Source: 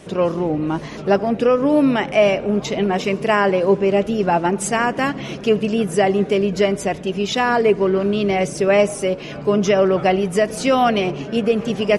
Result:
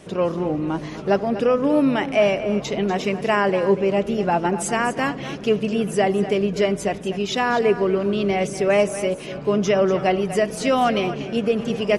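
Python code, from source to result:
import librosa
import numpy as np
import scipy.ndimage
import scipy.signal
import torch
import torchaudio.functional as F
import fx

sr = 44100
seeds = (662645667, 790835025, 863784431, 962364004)

y = x + 10.0 ** (-12.5 / 20.0) * np.pad(x, (int(243 * sr / 1000.0), 0))[:len(x)]
y = y * 10.0 ** (-3.0 / 20.0)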